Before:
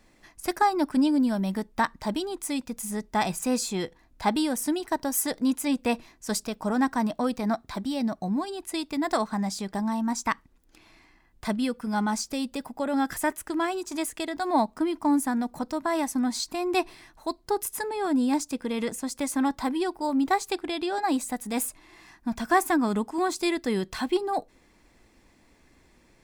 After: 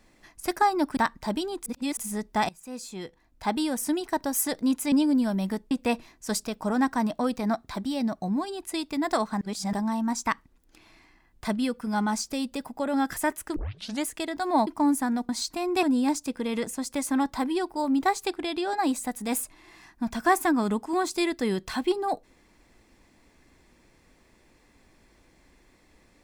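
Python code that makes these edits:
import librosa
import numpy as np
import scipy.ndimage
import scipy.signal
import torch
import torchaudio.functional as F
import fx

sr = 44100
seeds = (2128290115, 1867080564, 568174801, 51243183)

y = fx.edit(x, sr, fx.move(start_s=0.97, length_s=0.79, to_s=5.71),
    fx.reverse_span(start_s=2.45, length_s=0.31),
    fx.fade_in_from(start_s=3.28, length_s=1.41, floor_db=-22.5),
    fx.reverse_span(start_s=9.41, length_s=0.32),
    fx.tape_start(start_s=13.56, length_s=0.48),
    fx.cut(start_s=14.67, length_s=0.25),
    fx.cut(start_s=15.54, length_s=0.73),
    fx.cut(start_s=16.81, length_s=1.27), tone=tone)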